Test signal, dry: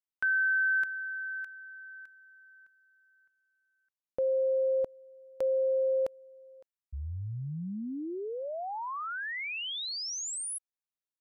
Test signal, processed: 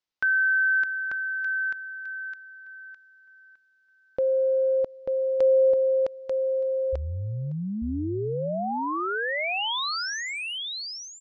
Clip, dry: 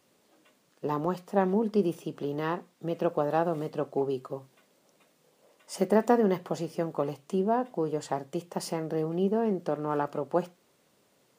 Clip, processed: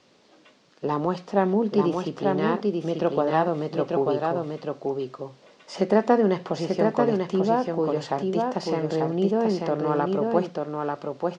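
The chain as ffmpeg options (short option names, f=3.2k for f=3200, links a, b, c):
-filter_complex "[0:a]acrossover=split=3400[a][b];[b]acompressor=threshold=-44dB:ratio=4:attack=1:release=60[c];[a][c]amix=inputs=2:normalize=0,lowpass=f=5.3k:w=0.5412,lowpass=f=5.3k:w=1.3066,bass=f=250:g=-1,treble=f=4k:g=5,asplit=2[d][e];[e]acompressor=threshold=-37dB:ratio=6:attack=1.4:release=48:knee=6,volume=-2dB[f];[d][f]amix=inputs=2:normalize=0,aecho=1:1:890:0.668,volume=3dB"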